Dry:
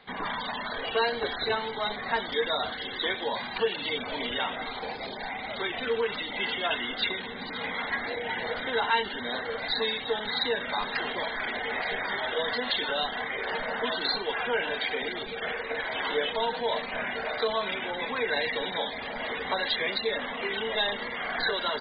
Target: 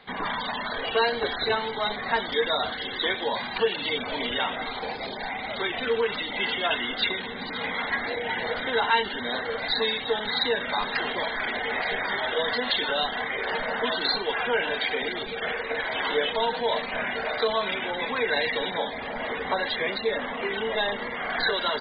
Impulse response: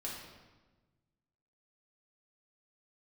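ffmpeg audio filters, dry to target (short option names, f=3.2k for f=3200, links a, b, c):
-filter_complex "[0:a]asettb=1/sr,asplit=3[a][b][c];[a]atrim=end=18.724[d];[b]atrim=start=18.72:end=21.3,asetpts=PTS-STARTPTS,afade=t=in:d=0.004:c=qsin,afade=t=out:st=2.576:d=0.004:c=qsin,aemphasis=mode=reproduction:type=75fm[e];[c]atrim=start=21.296[f];[d][e]acrossfade=d=0.004:c1=hsin:c2=qsin[g];[g][f]acrossfade=d=0.004:c1=qsin:c2=hsin,volume=3dB"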